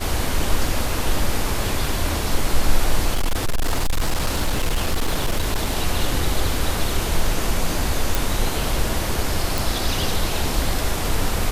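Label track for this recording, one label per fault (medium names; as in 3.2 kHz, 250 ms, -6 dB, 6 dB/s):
3.140000	5.730000	clipped -15.5 dBFS
8.150000	8.150000	pop
9.580000	9.580000	pop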